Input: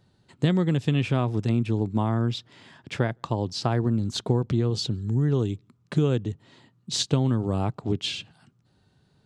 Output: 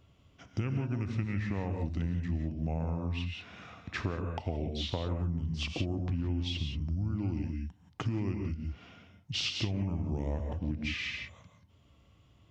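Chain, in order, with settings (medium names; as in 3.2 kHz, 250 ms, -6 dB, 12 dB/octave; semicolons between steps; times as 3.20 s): tape speed -26%; gated-style reverb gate 200 ms rising, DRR 5 dB; compression 3:1, threshold -33 dBFS, peak gain reduction 13 dB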